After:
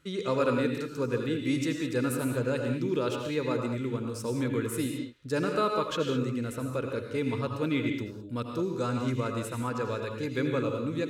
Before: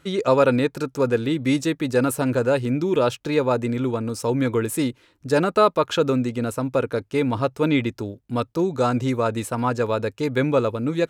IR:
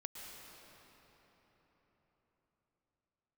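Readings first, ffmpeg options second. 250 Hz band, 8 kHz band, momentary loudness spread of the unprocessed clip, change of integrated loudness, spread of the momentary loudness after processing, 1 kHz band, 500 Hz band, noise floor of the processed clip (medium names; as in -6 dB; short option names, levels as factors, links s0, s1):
-7.0 dB, -7.0 dB, 7 LU, -8.0 dB, 5 LU, -9.5 dB, -9.5 dB, -40 dBFS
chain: -filter_complex "[0:a]equalizer=f=740:w=2.5:g=-11[s0];[1:a]atrim=start_sample=2205,afade=t=out:st=0.36:d=0.01,atrim=end_sample=16317,asetrate=61740,aresample=44100[s1];[s0][s1]afir=irnorm=-1:irlink=0"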